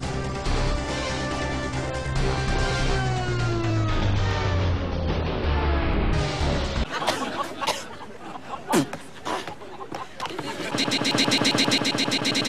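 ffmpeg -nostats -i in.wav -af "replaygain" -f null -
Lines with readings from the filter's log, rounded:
track_gain = +2.9 dB
track_peak = 0.258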